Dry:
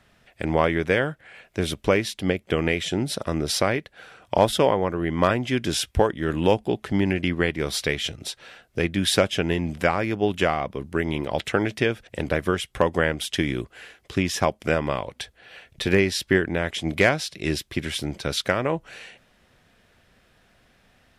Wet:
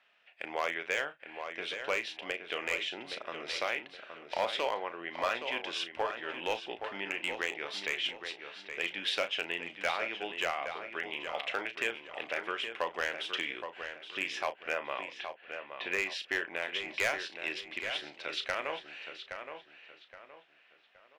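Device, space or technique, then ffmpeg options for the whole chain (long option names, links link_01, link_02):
megaphone: -filter_complex "[0:a]asettb=1/sr,asplit=3[link_01][link_02][link_03];[link_01]atrim=end=14.494[link_04];[link_02]atrim=start=14.49:end=16.07,asetpts=PTS-STARTPTS,afade=type=in:duration=0.004:curve=qsin,afade=type=out:start_time=1.576:duration=0.004:curve=qsin,lowpass=3100[link_05];[link_03]atrim=start=16.066[link_06];[link_04][link_05]acrossfade=duration=0.004:curve1=hsin:curve2=qsin[link_07];[link_07][link_06]acrossfade=duration=0.004:curve1=qsin:curve2=hsin,highpass=680,lowpass=3600,equalizer=frequency=2700:width_type=o:width=0.59:gain=8.5,asoftclip=type=hard:threshold=-14dB,asplit=2[link_08][link_09];[link_09]adelay=35,volume=-11dB[link_10];[link_08][link_10]amix=inputs=2:normalize=0,asplit=2[link_11][link_12];[link_12]adelay=820,lowpass=frequency=3400:poles=1,volume=-7.5dB,asplit=2[link_13][link_14];[link_14]adelay=820,lowpass=frequency=3400:poles=1,volume=0.35,asplit=2[link_15][link_16];[link_16]adelay=820,lowpass=frequency=3400:poles=1,volume=0.35,asplit=2[link_17][link_18];[link_18]adelay=820,lowpass=frequency=3400:poles=1,volume=0.35[link_19];[link_11][link_13][link_15][link_17][link_19]amix=inputs=5:normalize=0,volume=-8.5dB"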